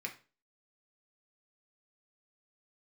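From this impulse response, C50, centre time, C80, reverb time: 12.0 dB, 12 ms, 18.0 dB, 0.35 s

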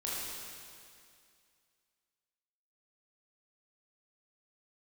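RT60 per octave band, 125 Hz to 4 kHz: 2.3, 2.3, 2.3, 2.3, 2.3, 2.3 s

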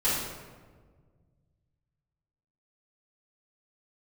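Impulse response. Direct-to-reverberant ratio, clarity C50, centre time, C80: -11.5 dB, -1.0 dB, 83 ms, 2.5 dB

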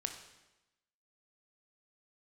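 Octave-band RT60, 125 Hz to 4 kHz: 1.0, 1.1, 1.0, 1.0, 0.95, 0.95 s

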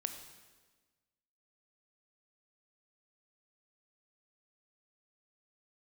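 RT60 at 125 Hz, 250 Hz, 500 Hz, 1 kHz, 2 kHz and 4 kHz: 1.6, 1.6, 1.4, 1.3, 1.3, 1.2 s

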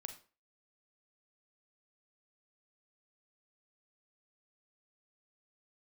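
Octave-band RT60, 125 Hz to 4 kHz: 0.35, 0.35, 0.40, 0.35, 0.35, 0.30 s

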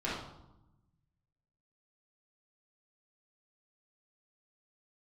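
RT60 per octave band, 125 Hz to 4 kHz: 1.8, 1.4, 0.90, 0.90, 0.60, 0.60 s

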